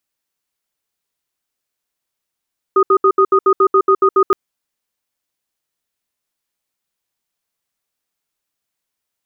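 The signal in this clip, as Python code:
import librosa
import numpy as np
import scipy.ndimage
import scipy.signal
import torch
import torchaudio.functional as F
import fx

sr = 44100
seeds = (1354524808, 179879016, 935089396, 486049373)

y = fx.cadence(sr, length_s=1.57, low_hz=387.0, high_hz=1240.0, on_s=0.07, off_s=0.07, level_db=-10.5)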